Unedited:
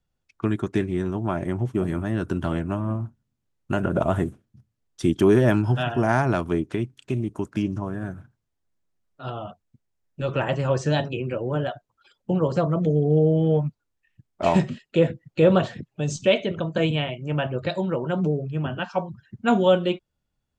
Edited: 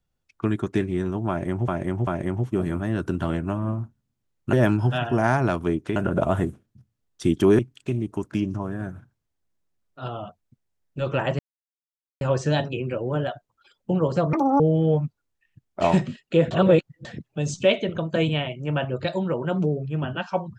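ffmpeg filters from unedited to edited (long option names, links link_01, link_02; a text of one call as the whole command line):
ffmpeg -i in.wav -filter_complex "[0:a]asplit=11[link_01][link_02][link_03][link_04][link_05][link_06][link_07][link_08][link_09][link_10][link_11];[link_01]atrim=end=1.682[link_12];[link_02]atrim=start=1.288:end=1.682[link_13];[link_03]atrim=start=1.288:end=3.752[link_14];[link_04]atrim=start=5.378:end=6.812[link_15];[link_05]atrim=start=3.748:end=5.382[link_16];[link_06]atrim=start=6.808:end=10.61,asetpts=PTS-STARTPTS,afade=type=out:start_time=3.798:duration=0.004:curve=hsin,apad=pad_dur=0.82[link_17];[link_07]atrim=start=10.61:end=12.734,asetpts=PTS-STARTPTS,afade=type=in:duration=0.004:curve=hsin[link_18];[link_08]atrim=start=12.73:end=13.22,asetpts=PTS-STARTPTS,asetrate=80262,aresample=44100,atrim=end_sample=11873,asetpts=PTS-STARTPTS[link_19];[link_09]atrim=start=13.216:end=15.132[link_20];[link_10]atrim=start=15.128:end=15.672,asetpts=PTS-STARTPTS,areverse[link_21];[link_11]atrim=start=15.668[link_22];[link_12][link_13]acrossfade=duration=0.004:curve1=hsin:curve2=hsin[link_23];[link_23][link_14]acrossfade=duration=0.004:curve1=hsin:curve2=hsin[link_24];[link_24][link_15]acrossfade=duration=0.004:curve1=hsin:curve2=hsin[link_25];[link_25][link_16]acrossfade=duration=0.004:curve1=hsin:curve2=hsin[link_26];[link_17][link_18]concat=n=2:v=0:a=1[link_27];[link_26][link_27]acrossfade=duration=0.004:curve1=hsin:curve2=hsin[link_28];[link_28][link_19]acrossfade=duration=0.004:curve1=hsin:curve2=hsin[link_29];[link_29][link_20]acrossfade=duration=0.004:curve1=hsin:curve2=hsin[link_30];[link_30][link_21]acrossfade=duration=0.004:curve1=hsin:curve2=hsin[link_31];[link_31][link_22]acrossfade=duration=0.004:curve1=hsin:curve2=hsin" out.wav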